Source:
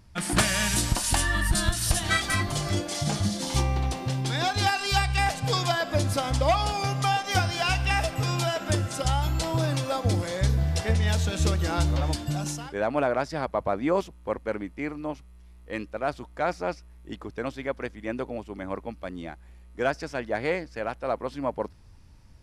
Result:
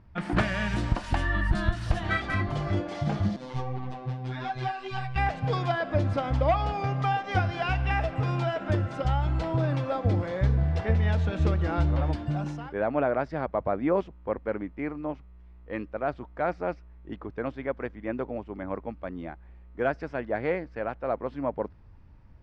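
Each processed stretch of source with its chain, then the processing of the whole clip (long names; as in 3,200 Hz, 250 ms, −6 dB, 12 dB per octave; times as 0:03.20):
0:03.36–0:05.16: phases set to zero 128 Hz + string-ensemble chorus
whole clip: low-pass filter 1,900 Hz 12 dB per octave; dynamic equaliser 1,000 Hz, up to −3 dB, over −36 dBFS, Q 2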